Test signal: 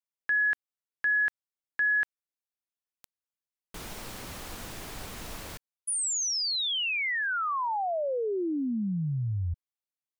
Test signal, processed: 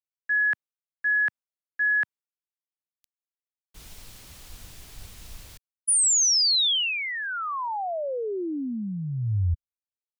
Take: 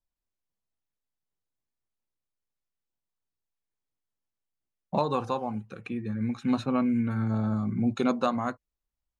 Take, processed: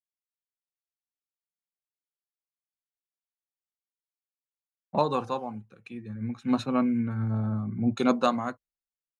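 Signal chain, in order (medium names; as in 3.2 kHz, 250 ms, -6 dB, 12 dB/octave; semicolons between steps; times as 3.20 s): three bands expanded up and down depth 100%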